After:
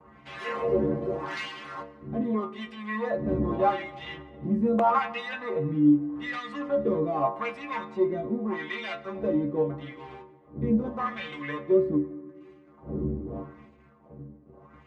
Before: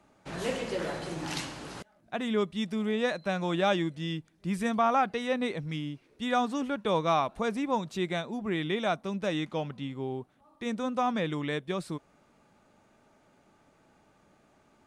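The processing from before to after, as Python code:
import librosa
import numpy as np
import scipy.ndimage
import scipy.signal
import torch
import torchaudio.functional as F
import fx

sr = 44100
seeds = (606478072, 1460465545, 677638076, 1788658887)

y = fx.dmg_wind(x, sr, seeds[0], corner_hz=180.0, level_db=-41.0)
y = scipy.signal.sosfilt(scipy.signal.butter(2, 42.0, 'highpass', fs=sr, output='sos'), y)
y = fx.low_shelf(y, sr, hz=480.0, db=2.5)
y = fx.leveller(y, sr, passes=3)
y = fx.tilt_eq(y, sr, slope=-2.0)
y = fx.stiff_resonator(y, sr, f0_hz=69.0, decay_s=0.47, stiffness=0.008)
y = fx.small_body(y, sr, hz=(1100.0, 2000.0), ring_ms=70, db=14)
y = (np.mod(10.0 ** (14.0 / 20.0) * y + 1.0, 2.0) - 1.0) / 10.0 ** (14.0 / 20.0)
y = fx.filter_lfo_bandpass(y, sr, shape='sine', hz=0.82, low_hz=270.0, high_hz=2700.0, q=1.8)
y = fx.rev_plate(y, sr, seeds[1], rt60_s=2.1, hf_ratio=0.55, predelay_ms=0, drr_db=15.5)
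y = y * librosa.db_to_amplitude(7.5)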